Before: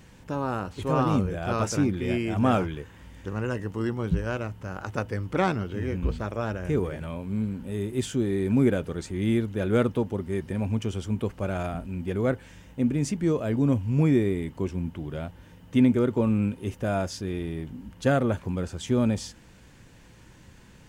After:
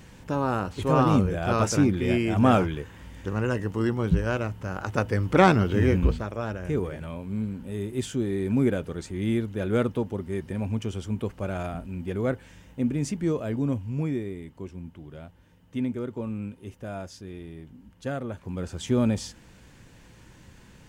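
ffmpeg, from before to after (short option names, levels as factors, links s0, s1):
-af "volume=8.41,afade=t=in:st=4.87:d=0.99:silence=0.501187,afade=t=out:st=5.86:d=0.39:silence=0.298538,afade=t=out:st=13.28:d=0.96:silence=0.421697,afade=t=in:st=18.36:d=0.43:silence=0.334965"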